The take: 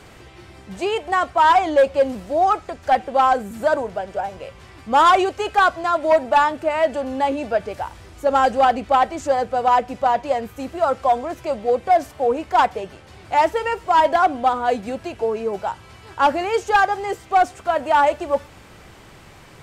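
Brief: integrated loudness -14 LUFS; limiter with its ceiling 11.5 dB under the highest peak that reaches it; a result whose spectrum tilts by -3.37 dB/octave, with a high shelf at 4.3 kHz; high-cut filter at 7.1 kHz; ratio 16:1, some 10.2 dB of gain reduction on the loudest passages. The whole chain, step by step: low-pass 7.1 kHz; treble shelf 4.3 kHz +4.5 dB; compression 16:1, threshold -21 dBFS; trim +18 dB; peak limiter -5.5 dBFS

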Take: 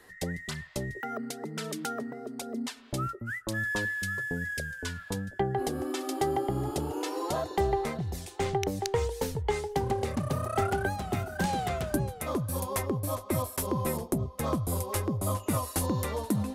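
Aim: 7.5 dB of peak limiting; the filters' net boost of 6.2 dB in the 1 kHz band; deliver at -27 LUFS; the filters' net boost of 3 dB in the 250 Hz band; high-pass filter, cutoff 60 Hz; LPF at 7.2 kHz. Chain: high-pass 60 Hz; low-pass 7.2 kHz; peaking EQ 250 Hz +3.5 dB; peaking EQ 1 kHz +8 dB; trim +3.5 dB; peak limiter -15.5 dBFS

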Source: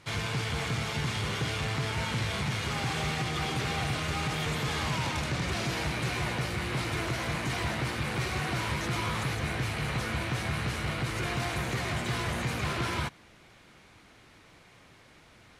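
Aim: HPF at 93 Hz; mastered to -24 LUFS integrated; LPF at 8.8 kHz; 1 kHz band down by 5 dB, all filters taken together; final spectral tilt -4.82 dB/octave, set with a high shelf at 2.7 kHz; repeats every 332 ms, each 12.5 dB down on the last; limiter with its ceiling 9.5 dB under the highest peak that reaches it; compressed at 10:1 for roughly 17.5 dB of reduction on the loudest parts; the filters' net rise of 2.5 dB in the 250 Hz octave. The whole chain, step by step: high-pass 93 Hz; low-pass 8.8 kHz; peaking EQ 250 Hz +4.5 dB; peaking EQ 1 kHz -5.5 dB; treble shelf 2.7 kHz -8 dB; compression 10:1, threshold -46 dBFS; peak limiter -44.5 dBFS; feedback delay 332 ms, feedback 24%, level -12.5 dB; trim +29 dB

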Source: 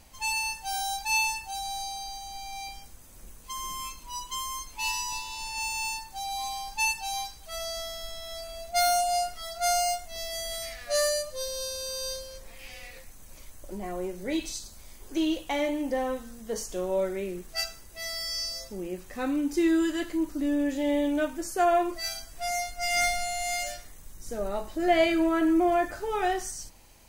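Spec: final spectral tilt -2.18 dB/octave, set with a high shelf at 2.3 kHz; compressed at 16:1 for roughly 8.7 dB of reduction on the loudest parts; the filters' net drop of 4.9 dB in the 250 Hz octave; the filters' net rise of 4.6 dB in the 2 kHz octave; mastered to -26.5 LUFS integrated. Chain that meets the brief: peaking EQ 250 Hz -7.5 dB; peaking EQ 2 kHz +3.5 dB; treble shelf 2.3 kHz +4 dB; compression 16:1, threshold -26 dBFS; trim +5 dB

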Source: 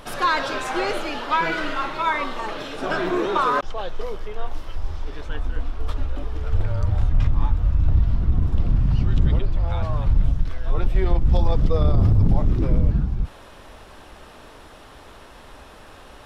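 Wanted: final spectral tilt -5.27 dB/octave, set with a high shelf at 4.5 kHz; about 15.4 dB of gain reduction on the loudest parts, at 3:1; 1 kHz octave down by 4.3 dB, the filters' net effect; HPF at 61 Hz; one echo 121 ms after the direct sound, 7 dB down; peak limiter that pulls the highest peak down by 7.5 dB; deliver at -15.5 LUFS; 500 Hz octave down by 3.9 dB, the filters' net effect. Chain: high-pass 61 Hz; peaking EQ 500 Hz -4 dB; peaking EQ 1 kHz -4.5 dB; treble shelf 4.5 kHz +4 dB; compression 3:1, threshold -37 dBFS; peak limiter -29.5 dBFS; delay 121 ms -7 dB; trim +23.5 dB

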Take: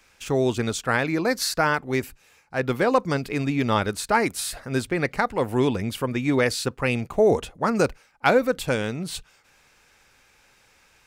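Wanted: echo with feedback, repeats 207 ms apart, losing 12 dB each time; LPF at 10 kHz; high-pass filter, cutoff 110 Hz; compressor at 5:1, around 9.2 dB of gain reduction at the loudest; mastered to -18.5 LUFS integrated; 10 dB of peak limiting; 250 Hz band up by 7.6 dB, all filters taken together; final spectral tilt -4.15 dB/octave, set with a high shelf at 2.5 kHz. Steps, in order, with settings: high-pass 110 Hz; low-pass 10 kHz; peaking EQ 250 Hz +9 dB; treble shelf 2.5 kHz +6.5 dB; compression 5:1, threshold -21 dBFS; peak limiter -16 dBFS; feedback delay 207 ms, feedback 25%, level -12 dB; trim +8.5 dB

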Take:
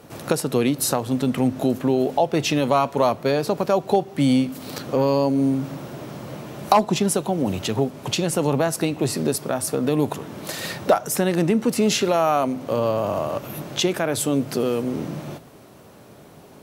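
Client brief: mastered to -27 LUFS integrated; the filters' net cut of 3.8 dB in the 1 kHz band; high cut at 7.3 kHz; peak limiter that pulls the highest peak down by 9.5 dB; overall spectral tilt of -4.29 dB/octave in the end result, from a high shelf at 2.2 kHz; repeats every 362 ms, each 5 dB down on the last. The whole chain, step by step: low-pass 7.3 kHz; peaking EQ 1 kHz -7 dB; treble shelf 2.2 kHz +8.5 dB; peak limiter -12 dBFS; feedback delay 362 ms, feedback 56%, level -5 dB; trim -5 dB

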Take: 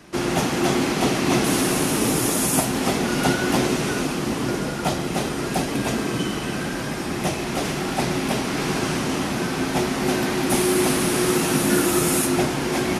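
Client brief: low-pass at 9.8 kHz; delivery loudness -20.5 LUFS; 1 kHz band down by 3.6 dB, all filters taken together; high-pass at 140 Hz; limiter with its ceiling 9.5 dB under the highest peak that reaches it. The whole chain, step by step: high-pass 140 Hz; low-pass 9.8 kHz; peaking EQ 1 kHz -5 dB; trim +5.5 dB; peak limiter -11 dBFS

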